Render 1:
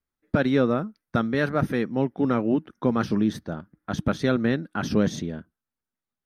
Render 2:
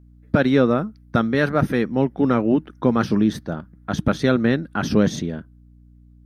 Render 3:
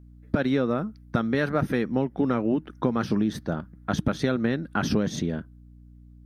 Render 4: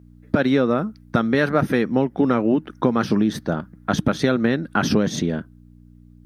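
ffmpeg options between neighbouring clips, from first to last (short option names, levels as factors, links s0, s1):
-af "aeval=exprs='val(0)+0.00251*(sin(2*PI*60*n/s)+sin(2*PI*2*60*n/s)/2+sin(2*PI*3*60*n/s)/3+sin(2*PI*4*60*n/s)/4+sin(2*PI*5*60*n/s)/5)':c=same,volume=1.68"
-af "acompressor=threshold=0.1:ratio=6"
-af "highpass=f=130:p=1,volume=2.11"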